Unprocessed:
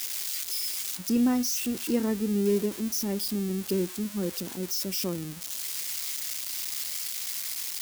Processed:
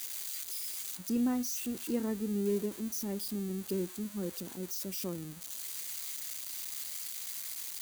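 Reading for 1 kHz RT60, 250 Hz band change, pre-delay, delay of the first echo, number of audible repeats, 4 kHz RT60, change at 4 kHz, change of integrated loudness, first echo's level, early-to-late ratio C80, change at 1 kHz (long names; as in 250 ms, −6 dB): no reverb audible, −6.5 dB, no reverb audible, no echo audible, no echo audible, no reverb audible, −10.0 dB, −7.0 dB, no echo audible, no reverb audible, −7.0 dB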